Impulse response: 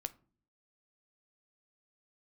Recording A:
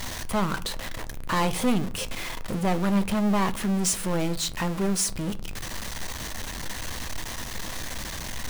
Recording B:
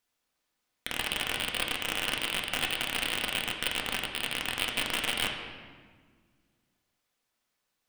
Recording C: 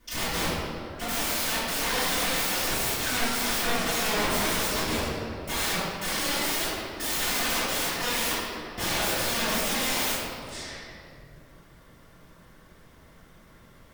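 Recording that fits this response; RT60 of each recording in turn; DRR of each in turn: A; 0.45, 1.6, 2.6 s; 11.0, 0.5, -15.0 dB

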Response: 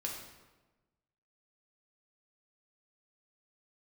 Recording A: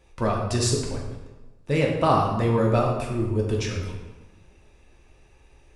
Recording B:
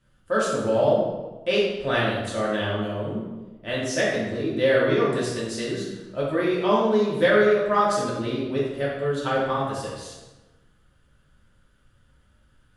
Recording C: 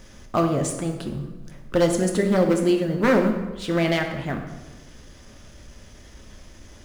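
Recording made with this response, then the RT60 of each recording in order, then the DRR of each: A; 1.2, 1.2, 1.2 s; -1.5, -7.0, 3.0 dB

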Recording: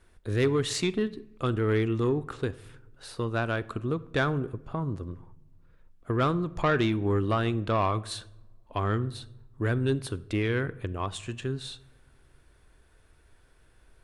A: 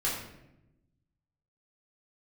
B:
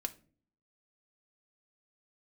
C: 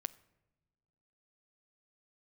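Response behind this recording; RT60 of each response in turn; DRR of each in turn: C; 0.90 s, 0.45 s, not exponential; -6.5, 6.5, 17.0 dB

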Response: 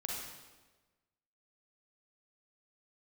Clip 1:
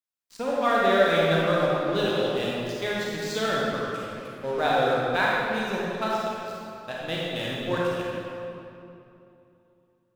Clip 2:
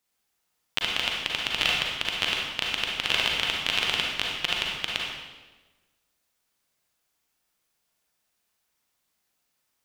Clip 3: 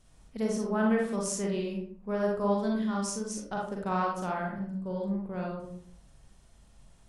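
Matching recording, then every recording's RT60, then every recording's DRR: 2; 2.8, 1.3, 0.60 s; -5.5, -2.5, -2.0 dB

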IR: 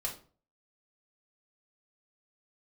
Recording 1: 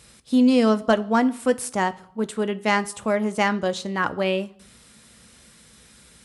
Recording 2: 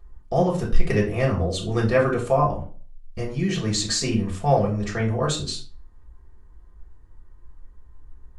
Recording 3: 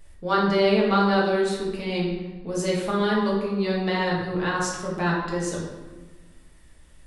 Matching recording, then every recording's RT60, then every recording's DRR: 2; 0.70, 0.40, 1.3 s; 11.0, -3.0, -5.0 dB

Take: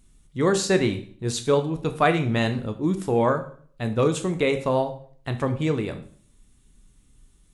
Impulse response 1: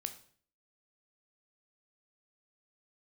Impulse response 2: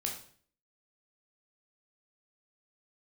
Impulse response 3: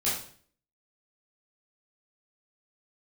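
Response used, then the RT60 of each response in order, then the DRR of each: 1; 0.50, 0.50, 0.50 s; 7.0, -0.5, -9.5 dB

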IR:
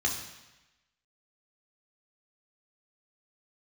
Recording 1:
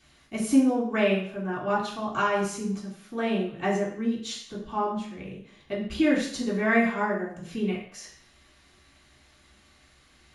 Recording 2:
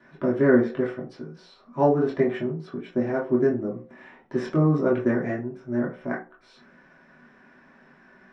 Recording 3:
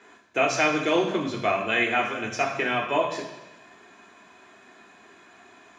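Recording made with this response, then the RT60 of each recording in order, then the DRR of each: 3; 0.60, 0.40, 1.0 s; -5.5, -5.0, -0.5 dB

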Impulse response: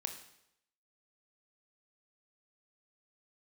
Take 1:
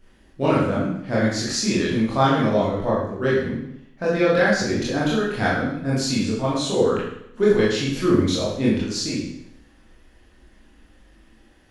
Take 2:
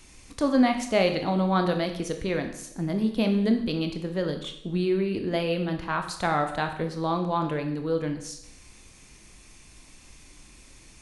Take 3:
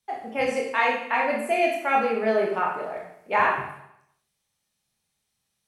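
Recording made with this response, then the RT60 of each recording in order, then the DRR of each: 2; 0.80, 0.80, 0.80 s; -8.0, 5.0, -2.0 dB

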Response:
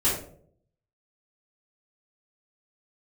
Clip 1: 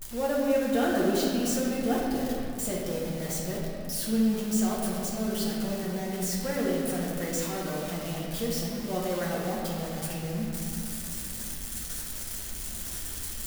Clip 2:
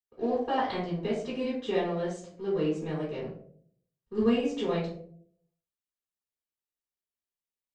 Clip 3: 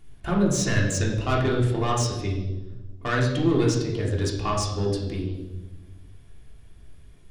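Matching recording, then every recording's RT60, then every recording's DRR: 2; 2.8, 0.60, 1.2 s; -5.5, -11.0, -4.0 dB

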